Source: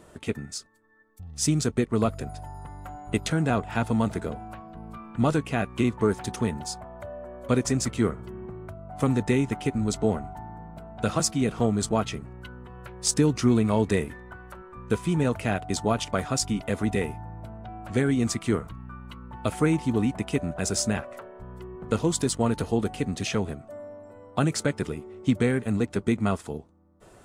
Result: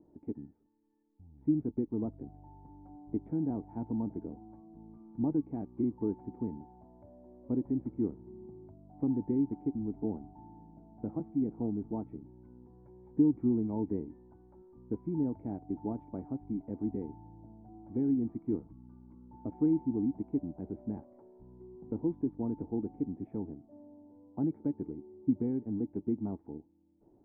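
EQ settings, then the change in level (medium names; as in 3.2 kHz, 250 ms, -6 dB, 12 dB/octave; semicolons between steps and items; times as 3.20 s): cascade formant filter u; distance through air 430 m; peaking EQ 1.7 kHz +8.5 dB 0.45 oct; 0.0 dB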